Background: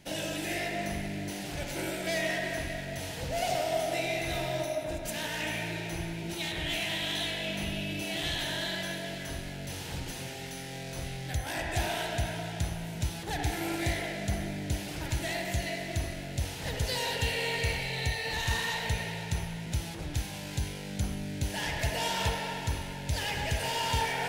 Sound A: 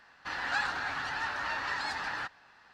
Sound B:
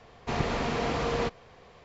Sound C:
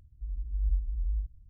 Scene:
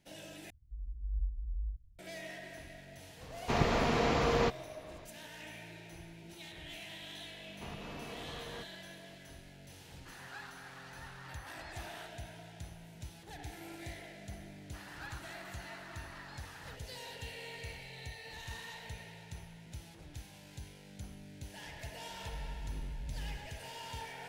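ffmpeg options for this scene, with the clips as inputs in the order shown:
-filter_complex "[3:a]asplit=2[a][b];[2:a]asplit=2[c][d];[1:a]asplit=2[e][f];[0:a]volume=-15dB[g];[d]alimiter=limit=-24dB:level=0:latency=1:release=172[h];[b]asoftclip=type=hard:threshold=-34.5dB[i];[g]asplit=2[j][k];[j]atrim=end=0.504[l];[a]atrim=end=1.49,asetpts=PTS-STARTPTS,volume=-7dB[m];[k]atrim=start=1.986[n];[c]atrim=end=1.84,asetpts=PTS-STARTPTS,volume=-0.5dB,afade=t=in:d=0.004:c=hsin,afade=t=out:st=1.836:d=0.004:c=hsin,adelay=141561S[o];[h]atrim=end=1.84,asetpts=PTS-STARTPTS,volume=-13.5dB,afade=t=in:d=0.004:c=hsin,afade=t=out:st=1.836:d=0.004:c=hsin,adelay=7340[p];[e]atrim=end=2.73,asetpts=PTS-STARTPTS,volume=-17.5dB,afade=t=in:d=0.004:c=hsin,afade=t=out:st=2.726:d=0.004:c=hsin,adelay=9800[q];[f]atrim=end=2.73,asetpts=PTS-STARTPTS,volume=-17dB,afade=t=in:d=0.004:c=hsin,afade=t=out:st=2.726:d=0.004:c=hsin,adelay=14480[r];[i]atrim=end=1.49,asetpts=PTS-STARTPTS,volume=-4.5dB,afade=t=in:d=0.004:c=hsin,afade=t=out:st=1.486:d=0.004:c=hsin,adelay=22110[s];[l][m]acrossfade=d=0.004:c1=hsin:c2=hsin[t];[t][n]acrossfade=d=0.004:c1=hsin:c2=hsin[u];[u][o][p][q][r][s]amix=inputs=6:normalize=0"

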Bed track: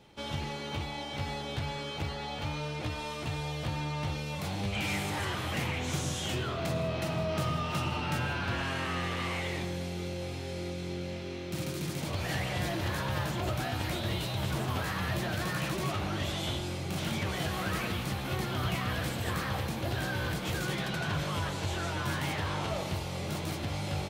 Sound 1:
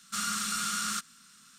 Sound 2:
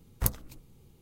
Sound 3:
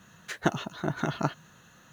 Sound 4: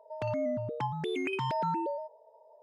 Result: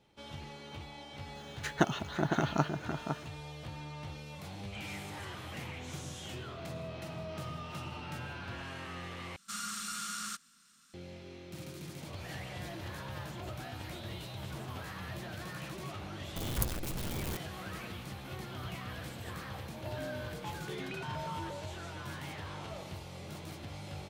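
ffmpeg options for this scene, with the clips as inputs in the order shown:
-filter_complex "[0:a]volume=-10dB[a];[3:a]asplit=2[b][c];[c]adelay=507.3,volume=-6dB,highshelf=f=4k:g=-11.4[d];[b][d]amix=inputs=2:normalize=0[e];[2:a]aeval=exprs='val(0)+0.5*0.0631*sgn(val(0))':c=same[f];[a]asplit=2[g][h];[g]atrim=end=9.364[i];[1:a]atrim=end=1.58,asetpts=PTS-STARTPTS,volume=-7.5dB[j];[h]atrim=start=10.936[k];[e]atrim=end=1.92,asetpts=PTS-STARTPTS,volume=-1.5dB,afade=t=in:d=0.004:c=hsin,afade=t=out:st=1.916:d=0.004:c=hsin,adelay=1350[l];[f]atrim=end=1.01,asetpts=PTS-STARTPTS,volume=-8dB,afade=t=in:d=0.004:c=hsin,afade=t=out:st=1.006:d=0.004:c=hsin,adelay=721476S[m];[4:a]atrim=end=2.62,asetpts=PTS-STARTPTS,volume=-10.5dB,afade=t=in:d=0.004:c=hsin,afade=t=out:st=2.616:d=0.004:c=hsin,adelay=19640[n];[i][j]acrossfade=d=0.004:c1=hsin:c2=hsin[o];[o][k]acrossfade=d=0.004:c1=hsin:c2=hsin[p];[p][l][m][n]amix=inputs=4:normalize=0"

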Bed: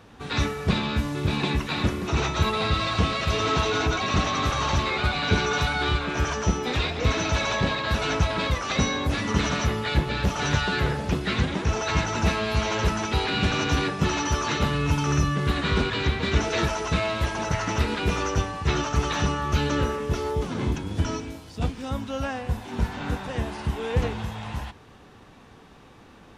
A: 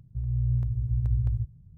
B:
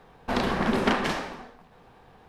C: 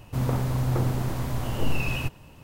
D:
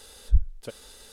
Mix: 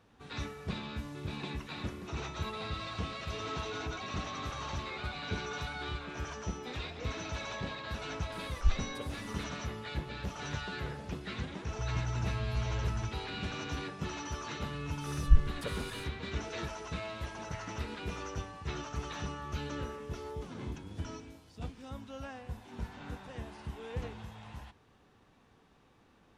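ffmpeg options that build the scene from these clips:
-filter_complex "[4:a]asplit=2[a][b];[0:a]volume=-14.5dB[c];[1:a]alimiter=level_in=2.5dB:limit=-24dB:level=0:latency=1:release=71,volume=-2.5dB[d];[a]atrim=end=1.12,asetpts=PTS-STARTPTS,volume=-7.5dB,afade=t=in:d=0.004:c=hsin,afade=t=out:st=1.116:d=0.004:c=hsin,adelay=8320[e];[d]atrim=end=1.77,asetpts=PTS-STARTPTS,volume=-2.5dB,afade=t=in:d=0.004:c=hsin,afade=t=out:st=1.766:d=0.004:c=hsin,adelay=11640[f];[b]atrim=end=1.12,asetpts=PTS-STARTPTS,volume=-1.5dB,afade=t=in:d=0.1,afade=t=out:st=1.02:d=0.1,adelay=14980[g];[c][e][f][g]amix=inputs=4:normalize=0"

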